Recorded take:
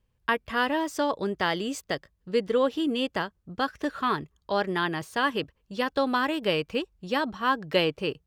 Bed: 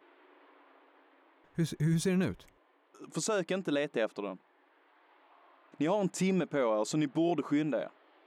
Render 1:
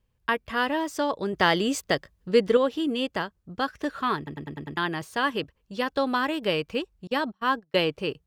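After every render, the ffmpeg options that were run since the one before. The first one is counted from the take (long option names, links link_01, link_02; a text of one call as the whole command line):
ffmpeg -i in.wav -filter_complex "[0:a]asettb=1/sr,asplit=3[link_01][link_02][link_03];[link_01]atrim=end=1.334[link_04];[link_02]atrim=start=1.33:end=2.57,asetpts=PTS-STARTPTS,afade=type=in:duration=0.004:curve=qsin,afade=type=out:start_time=1.236:duration=0.004:curve=qsin,acontrast=39[link_05];[link_03]atrim=start=2.566[link_06];[link_04][link_05]acrossfade=duration=0.004:curve1=hsin:curve2=qsin[link_07];[link_07][link_06]acrossfade=duration=0.004:curve1=qsin:curve2=hsin,asettb=1/sr,asplit=3[link_08][link_09][link_10];[link_08]atrim=end=7.074[link_11];[link_09]atrim=start=7.07:end=7.76,asetpts=PTS-STARTPTS,afade=type=in:duration=0.004:curve=qsin,afade=type=out:start_time=0.686:duration=0.004:curve=qsin,agate=range=-32dB:threshold=-36dB:ratio=16:release=100:detection=peak[link_12];[link_10]atrim=start=7.756[link_13];[link_11][link_12]acrossfade=duration=0.004:curve1=hsin:curve2=qsin[link_14];[link_14][link_13]acrossfade=duration=0.004:curve1=qsin:curve2=hsin,asplit=7[link_15][link_16][link_17][link_18][link_19][link_20][link_21];[link_15]atrim=end=4.272[link_22];[link_16]atrim=start=4.168:end=4.272[link_23];[link_17]atrim=start=4.168:end=4.272[link_24];[link_18]atrim=start=4.168:end=4.272[link_25];[link_19]atrim=start=4.168:end=4.272[link_26];[link_20]atrim=start=4.168:end=4.272[link_27];[link_21]atrim=start=4.768[link_28];[link_22][link_23]acrossfade=duration=0.004:curve1=hsin:curve2=hsin[link_29];[link_29][link_24]acrossfade=duration=0.004:curve1=hsin:curve2=hsin[link_30];[link_30][link_25]acrossfade=duration=0.004:curve1=hsin:curve2=hsin[link_31];[link_31][link_26]acrossfade=duration=0.004:curve1=hsin:curve2=hsin[link_32];[link_32][link_27]acrossfade=duration=0.004:curve1=hsin:curve2=hsin[link_33];[link_33][link_28]acrossfade=duration=0.004:curve1=hsin:curve2=hsin" out.wav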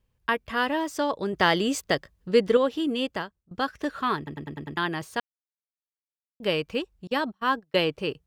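ffmpeg -i in.wav -filter_complex "[0:a]asplit=4[link_01][link_02][link_03][link_04];[link_01]atrim=end=3.51,asetpts=PTS-STARTPTS,afade=type=out:start_time=3.08:duration=0.43:silence=0.0749894[link_05];[link_02]atrim=start=3.51:end=5.2,asetpts=PTS-STARTPTS,afade=type=in:duration=0.004:curve=hsin:silence=0.0749894,afade=type=out:start_time=1.686:duration=0.004:curve=hsin[link_06];[link_03]atrim=start=5.2:end=6.4,asetpts=PTS-STARTPTS,volume=0[link_07];[link_04]atrim=start=6.4,asetpts=PTS-STARTPTS,afade=type=in:duration=0.004:curve=hsin[link_08];[link_05][link_06][link_07][link_08]concat=n=4:v=0:a=1" out.wav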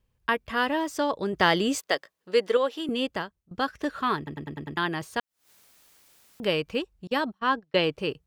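ffmpeg -i in.wav -filter_complex "[0:a]asettb=1/sr,asplit=3[link_01][link_02][link_03];[link_01]atrim=end=1.784[link_04];[link_02]atrim=start=1.78:end=2.89,asetpts=PTS-STARTPTS,afade=type=in:duration=0.004:curve=qsin,afade=type=out:start_time=1.106:duration=0.004:curve=qsin,highpass=440[link_05];[link_03]atrim=start=2.886[link_06];[link_04][link_05]acrossfade=duration=0.004:curve1=hsin:curve2=qsin[link_07];[link_07][link_06]acrossfade=duration=0.004:curve1=qsin:curve2=hsin,asettb=1/sr,asplit=3[link_08][link_09][link_10];[link_08]atrim=end=5.174[link_11];[link_09]atrim=start=5.17:end=6.69,asetpts=PTS-STARTPTS,afade=type=in:duration=0.004:curve=qsin,afade=type=out:start_time=1.516:duration=0.004:curve=qsin,acompressor=mode=upward:threshold=-29dB:ratio=2.5:attack=3.2:release=140:knee=2.83:detection=peak[link_12];[link_10]atrim=start=6.686[link_13];[link_11][link_12]acrossfade=duration=0.004:curve1=hsin:curve2=qsin[link_14];[link_14][link_13]acrossfade=duration=0.004:curve1=qsin:curve2=hsin,asettb=1/sr,asplit=3[link_15][link_16][link_17];[link_15]atrim=end=7.394[link_18];[link_16]atrim=start=7.39:end=7.84,asetpts=PTS-STARTPTS,afade=type=in:duration=0.004:curve=qsin,afade=type=out:start_time=0.446:duration=0.004:curve=qsin,lowpass=6100[link_19];[link_17]atrim=start=7.836[link_20];[link_18][link_19]acrossfade=duration=0.004:curve1=hsin:curve2=qsin[link_21];[link_21][link_20]acrossfade=duration=0.004:curve1=qsin:curve2=hsin" out.wav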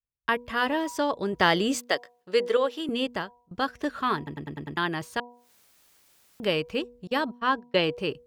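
ffmpeg -i in.wav -af "bandreject=frequency=242:width_type=h:width=4,bandreject=frequency=484:width_type=h:width=4,bandreject=frequency=726:width_type=h:width=4,bandreject=frequency=968:width_type=h:width=4,agate=range=-33dB:threshold=-55dB:ratio=3:detection=peak" out.wav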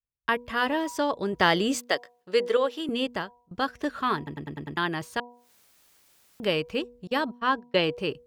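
ffmpeg -i in.wav -af anull out.wav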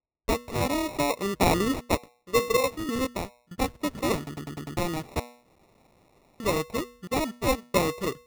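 ffmpeg -i in.wav -af "acrusher=samples=28:mix=1:aa=0.000001" out.wav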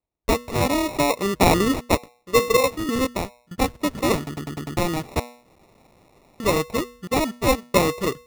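ffmpeg -i in.wav -af "volume=5.5dB" out.wav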